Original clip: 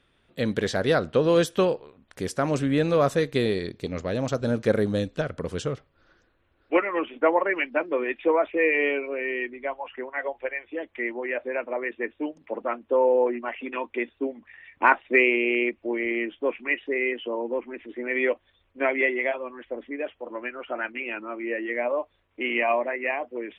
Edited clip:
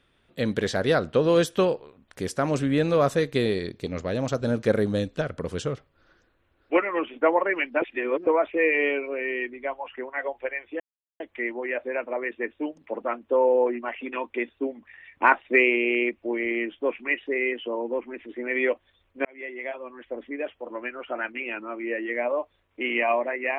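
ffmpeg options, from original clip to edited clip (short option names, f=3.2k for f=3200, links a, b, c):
-filter_complex "[0:a]asplit=5[a][b][c][d][e];[a]atrim=end=7.822[f];[b]atrim=start=7.818:end=8.272,asetpts=PTS-STARTPTS,areverse[g];[c]atrim=start=8.268:end=10.8,asetpts=PTS-STARTPTS,afade=t=out:st=2.528:d=0.004:c=hsin,apad=pad_dur=0.4[h];[d]atrim=start=10.8:end=18.85,asetpts=PTS-STARTPTS,afade=t=in:d=0.004:c=hsin,afade=t=out:st=8.046:d=0.004:c=hsin[i];[e]atrim=start=18.85,asetpts=PTS-STARTPTS,afade=t=in:d=0.95[j];[f][g]acrossfade=d=0.004:c1=hsin:c2=hsin[k];[h][i][j]concat=n=3:v=0:a=1[l];[k][l]acrossfade=d=0.004:c1=hsin:c2=hsin"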